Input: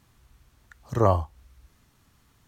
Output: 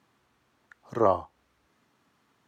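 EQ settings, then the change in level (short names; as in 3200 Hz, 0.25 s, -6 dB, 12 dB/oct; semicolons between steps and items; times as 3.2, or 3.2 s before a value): HPF 250 Hz 12 dB/oct; LPF 2300 Hz 6 dB/oct; 0.0 dB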